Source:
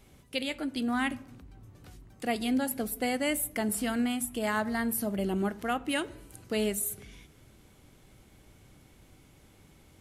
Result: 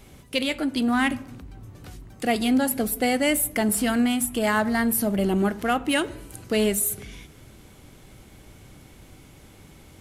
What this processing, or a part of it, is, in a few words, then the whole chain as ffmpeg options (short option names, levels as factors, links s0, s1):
parallel distortion: -filter_complex "[0:a]asplit=2[s0][s1];[s1]asoftclip=type=hard:threshold=0.0211,volume=0.398[s2];[s0][s2]amix=inputs=2:normalize=0,volume=2"